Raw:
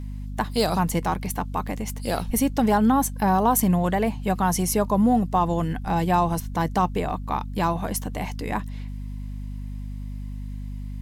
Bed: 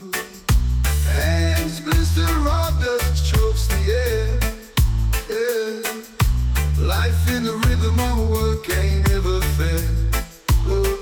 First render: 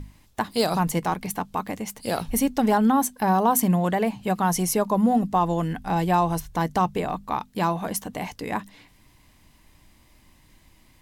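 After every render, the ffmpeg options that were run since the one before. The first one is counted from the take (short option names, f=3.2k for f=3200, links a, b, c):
-af "bandreject=f=50:t=h:w=6,bandreject=f=100:t=h:w=6,bandreject=f=150:t=h:w=6,bandreject=f=200:t=h:w=6,bandreject=f=250:t=h:w=6"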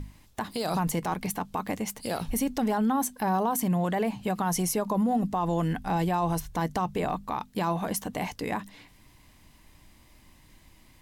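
-af "alimiter=limit=-19dB:level=0:latency=1:release=55"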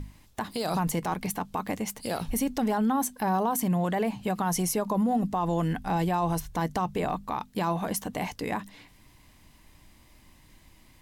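-af anull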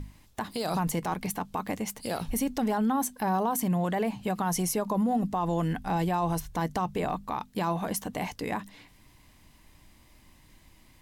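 -af "volume=-1dB"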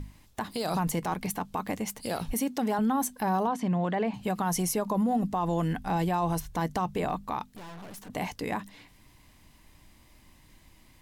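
-filter_complex "[0:a]asettb=1/sr,asplit=3[a][b][c];[a]atrim=end=2.334[d];[b]atrim=start=2.33:end=2.79,asetpts=PTS-STARTPTS,afade=t=in:d=0.004:c=qsin,afade=t=out:st=0.456:d=0.004:c=qsin,highpass=170[e];[c]atrim=start=2.786[f];[d][e]acrossfade=d=0.004:c1=hsin:c2=qsin[g];[g][f]acrossfade=d=0.004:c1=qsin:c2=hsin,asettb=1/sr,asplit=3[h][i][j];[h]atrim=end=3.474[k];[i]atrim=start=3.47:end=4.14,asetpts=PTS-STARTPTS,afade=t=in:d=0.004:c=qsin,afade=t=out:st=0.666:d=0.004:c=qsin,highpass=110,lowpass=4k[l];[j]atrim=start=4.136[m];[k][l]acrossfade=d=0.004:c1=hsin:c2=qsin[n];[n][m]acrossfade=d=0.004:c1=qsin:c2=hsin,asettb=1/sr,asplit=3[o][p][q];[o]atrim=end=7.554[r];[p]atrim=start=7.55:end=8.1,asetpts=PTS-STARTPTS,afade=t=in:d=0.004:c=qsin,afade=t=out:st=0.546:d=0.004:c=qsin,aeval=exprs='(tanh(141*val(0)+0.6)-tanh(0.6))/141':c=same[s];[q]atrim=start=8.096[t];[r][s]acrossfade=d=0.004:c1=hsin:c2=qsin[u];[u][t]acrossfade=d=0.004:c1=qsin:c2=hsin"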